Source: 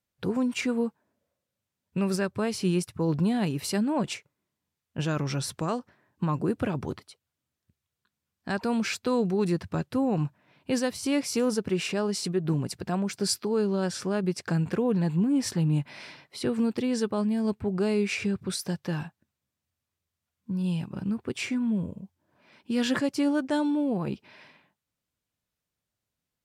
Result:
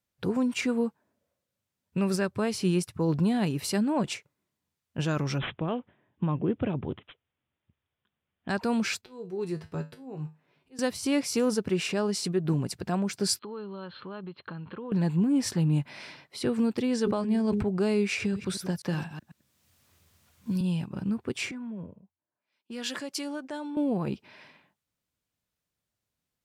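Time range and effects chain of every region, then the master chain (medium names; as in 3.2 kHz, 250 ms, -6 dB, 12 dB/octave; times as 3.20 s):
5.38–8.49 s: peaking EQ 1.4 kHz -7 dB 1.4 oct + careless resampling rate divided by 6×, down none, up filtered
9.01–10.79 s: peaking EQ 410 Hz +9.5 dB 0.27 oct + slow attack 467 ms + feedback comb 52 Hz, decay 0.26 s, harmonics odd, mix 80%
13.39–14.92 s: band-stop 720 Hz, Q 6.7 + compression 2.5:1, threshold -29 dBFS + rippled Chebyshev low-pass 4.3 kHz, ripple 9 dB
16.96–17.63 s: treble shelf 12 kHz -11.5 dB + de-hum 103.2 Hz, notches 5 + decay stretcher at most 32 dB/s
18.20–20.61 s: chunks repeated in reverse 124 ms, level -11.5 dB + three bands compressed up and down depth 70%
21.51–23.77 s: high-pass 470 Hz 6 dB/octave + compression 4:1, threshold -33 dBFS + three bands expanded up and down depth 100%
whole clip: none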